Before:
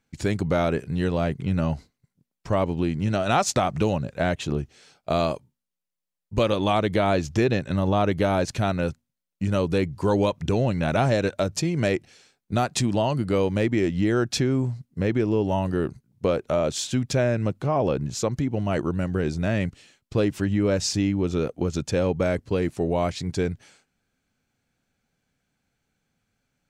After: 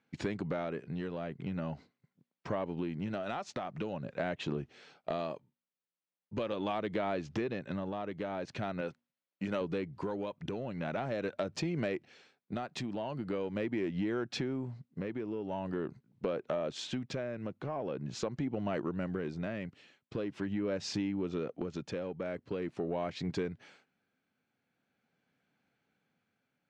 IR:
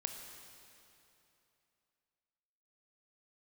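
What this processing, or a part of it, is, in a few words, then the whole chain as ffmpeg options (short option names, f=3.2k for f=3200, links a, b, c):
AM radio: -filter_complex "[0:a]asettb=1/sr,asplit=3[a][b][c];[a]atrim=end=8.814[d];[b]atrim=start=8.81:end=9.61,asetpts=PTS-STARTPTS,afade=t=in:d=0.004:c=qsin,afade=t=out:st=0.796:d=0.004:c=qsin,highpass=f=320:p=1[e];[c]atrim=start=9.606[f];[d][e]acrossfade=d=0.004:c1=hsin:c2=qsin[g];[g][f]acrossfade=d=0.004:c1=qsin:c2=hsin,highpass=170,lowpass=3.3k,acompressor=threshold=-30dB:ratio=6,asoftclip=type=tanh:threshold=-21.5dB,tremolo=f=0.43:d=0.39"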